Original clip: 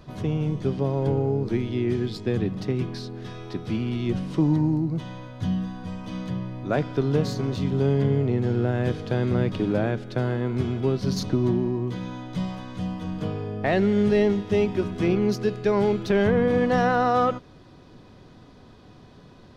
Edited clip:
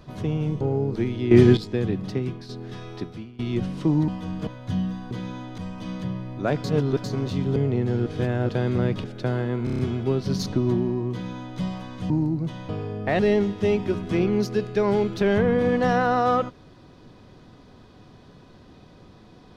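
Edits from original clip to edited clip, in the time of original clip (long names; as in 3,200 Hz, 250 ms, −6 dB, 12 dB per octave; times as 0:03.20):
0:00.61–0:01.14: remove
0:01.84–0:02.10: clip gain +11.5 dB
0:02.68–0:03.02: fade out, to −9 dB
0:03.54–0:03.92: fade out quadratic, to −20 dB
0:04.61–0:05.20: swap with 0:12.87–0:13.26
0:06.90–0:07.30: reverse
0:07.82–0:08.12: remove
0:08.62–0:09.05: reverse
0:09.60–0:09.96: remove
0:10.56: stutter 0.03 s, 6 plays
0:11.89–0:12.36: duplicate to 0:05.84
0:13.76–0:14.08: remove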